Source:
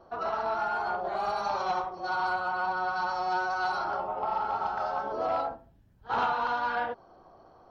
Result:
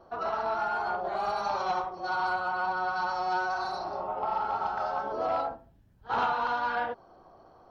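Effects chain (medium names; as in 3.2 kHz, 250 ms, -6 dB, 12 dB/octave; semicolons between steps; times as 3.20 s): spectral replace 3.58–4.02 s, 710–3500 Hz both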